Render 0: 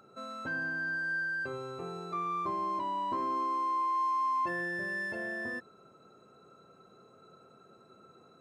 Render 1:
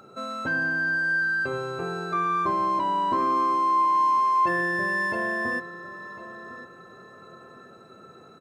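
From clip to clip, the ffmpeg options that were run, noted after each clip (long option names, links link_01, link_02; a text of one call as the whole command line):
ffmpeg -i in.wav -filter_complex "[0:a]asplit=2[link_01][link_02];[link_02]adelay=1052,lowpass=frequency=2700:poles=1,volume=-14dB,asplit=2[link_03][link_04];[link_04]adelay=1052,lowpass=frequency=2700:poles=1,volume=0.31,asplit=2[link_05][link_06];[link_06]adelay=1052,lowpass=frequency=2700:poles=1,volume=0.31[link_07];[link_01][link_03][link_05][link_07]amix=inputs=4:normalize=0,volume=9dB" out.wav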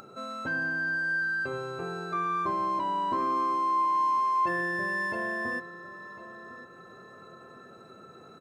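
ffmpeg -i in.wav -af "acompressor=mode=upward:threshold=-39dB:ratio=2.5,volume=-4.5dB" out.wav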